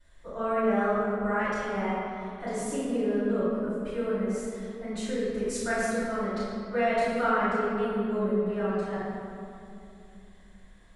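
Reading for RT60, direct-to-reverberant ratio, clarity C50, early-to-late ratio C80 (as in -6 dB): 2.6 s, -14.0 dB, -4.0 dB, -2.0 dB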